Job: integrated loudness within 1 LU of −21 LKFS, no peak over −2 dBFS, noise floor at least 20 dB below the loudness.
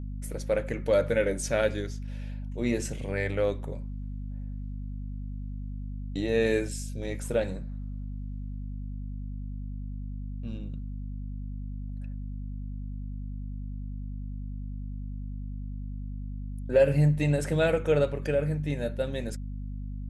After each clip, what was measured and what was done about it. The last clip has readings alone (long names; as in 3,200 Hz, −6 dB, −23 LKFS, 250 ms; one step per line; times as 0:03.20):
mains hum 50 Hz; hum harmonics up to 250 Hz; level of the hum −33 dBFS; integrated loudness −31.5 LKFS; sample peak −11.0 dBFS; target loudness −21.0 LKFS
→ mains-hum notches 50/100/150/200/250 Hz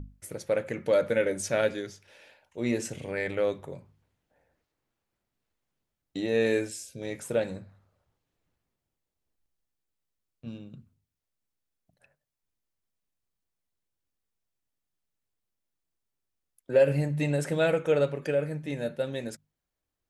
mains hum none found; integrated loudness −28.5 LKFS; sample peak −11.5 dBFS; target loudness −21.0 LKFS
→ level +7.5 dB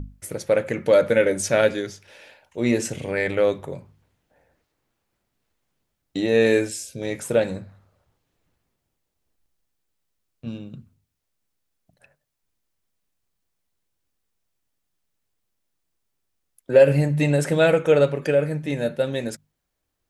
integrated loudness −21.0 LKFS; sample peak −4.0 dBFS; background noise floor −78 dBFS